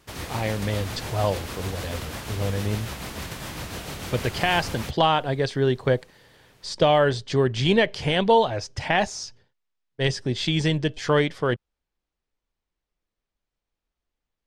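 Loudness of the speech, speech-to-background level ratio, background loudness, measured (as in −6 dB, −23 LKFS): −24.0 LKFS, 10.5 dB, −34.5 LKFS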